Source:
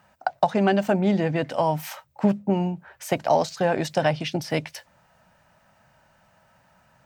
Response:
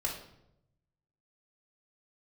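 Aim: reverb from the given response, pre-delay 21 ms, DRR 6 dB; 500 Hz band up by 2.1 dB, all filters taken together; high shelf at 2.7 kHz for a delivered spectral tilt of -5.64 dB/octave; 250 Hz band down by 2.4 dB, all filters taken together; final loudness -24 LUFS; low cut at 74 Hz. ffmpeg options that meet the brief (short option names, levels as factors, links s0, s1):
-filter_complex "[0:a]highpass=74,equalizer=f=250:t=o:g=-4.5,equalizer=f=500:t=o:g=4,highshelf=f=2700:g=-4,asplit=2[s0][s1];[1:a]atrim=start_sample=2205,adelay=21[s2];[s1][s2]afir=irnorm=-1:irlink=0,volume=0.316[s3];[s0][s3]amix=inputs=2:normalize=0,volume=0.794"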